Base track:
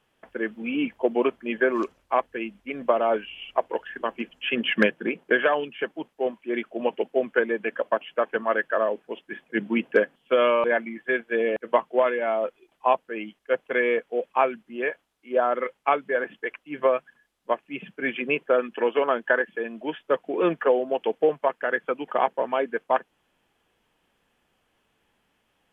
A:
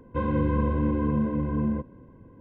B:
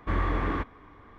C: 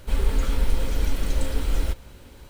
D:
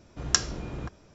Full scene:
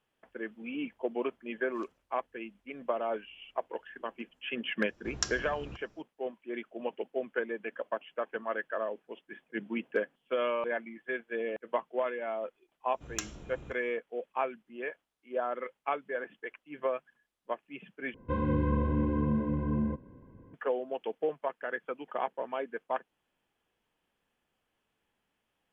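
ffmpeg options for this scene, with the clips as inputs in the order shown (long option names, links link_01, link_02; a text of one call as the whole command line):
ffmpeg -i bed.wav -i cue0.wav -i cue1.wav -i cue2.wav -i cue3.wav -filter_complex "[4:a]asplit=2[link_01][link_02];[0:a]volume=-10.5dB[link_03];[link_02]aexciter=amount=1.1:drive=5.4:freq=2600[link_04];[link_03]asplit=2[link_05][link_06];[link_05]atrim=end=18.144[link_07];[1:a]atrim=end=2.4,asetpts=PTS-STARTPTS,volume=-4dB[link_08];[link_06]atrim=start=20.536[link_09];[link_01]atrim=end=1.14,asetpts=PTS-STARTPTS,volume=-9dB,afade=type=in:duration=0.004:curve=hsin,afade=type=out:start_time=1.136:duration=0.004:curve=hsin,adelay=4880[link_10];[link_04]atrim=end=1.14,asetpts=PTS-STARTPTS,volume=-12dB,afade=type=in:duration=0.1,afade=type=out:start_time=1.04:duration=0.1,adelay=566244S[link_11];[link_07][link_08]acrossfade=duration=0.004:curve1=hsin:curve2=hsin[link_12];[link_12][link_09]acrossfade=duration=0.004:curve1=hsin:curve2=hsin[link_13];[link_13][link_10][link_11]amix=inputs=3:normalize=0" out.wav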